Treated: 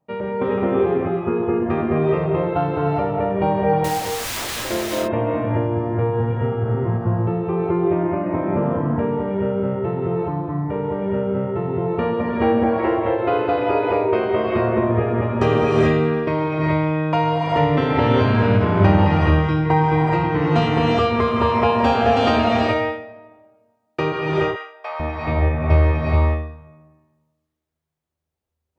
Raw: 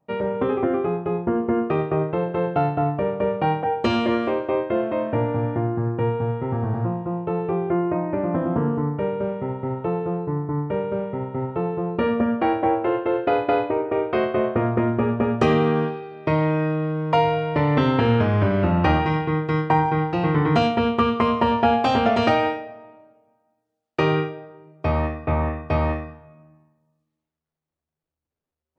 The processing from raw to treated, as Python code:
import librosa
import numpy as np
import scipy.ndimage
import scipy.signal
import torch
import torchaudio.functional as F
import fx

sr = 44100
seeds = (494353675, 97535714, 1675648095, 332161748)

y = fx.overflow_wrap(x, sr, gain_db=25.5, at=(3.84, 4.65))
y = fx.highpass(y, sr, hz=680.0, slope=24, at=(24.12, 25.0))
y = fx.rev_gated(y, sr, seeds[0], gate_ms=450, shape='rising', drr_db=-4.0)
y = fx.end_taper(y, sr, db_per_s=120.0)
y = y * 10.0 ** (-2.0 / 20.0)